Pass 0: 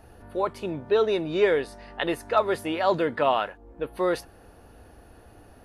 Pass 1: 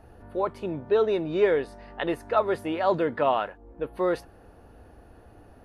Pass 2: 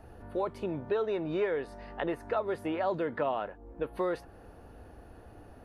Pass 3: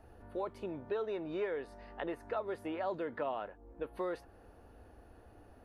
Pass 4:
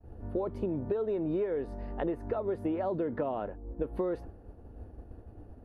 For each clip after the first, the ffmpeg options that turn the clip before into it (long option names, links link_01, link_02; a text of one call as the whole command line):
ffmpeg -i in.wav -af "highshelf=frequency=2500:gain=-9" out.wav
ffmpeg -i in.wav -filter_complex "[0:a]acrossover=split=710|2200[link_01][link_02][link_03];[link_01]acompressor=threshold=-31dB:ratio=4[link_04];[link_02]acompressor=threshold=-37dB:ratio=4[link_05];[link_03]acompressor=threshold=-54dB:ratio=4[link_06];[link_04][link_05][link_06]amix=inputs=3:normalize=0" out.wav
ffmpeg -i in.wav -af "equalizer=frequency=150:width=2.4:gain=-5.5,volume=-6dB" out.wav
ffmpeg -i in.wav -af "agate=range=-33dB:threshold=-51dB:ratio=3:detection=peak,tiltshelf=frequency=680:gain=10,acompressor=threshold=-35dB:ratio=6,volume=7dB" out.wav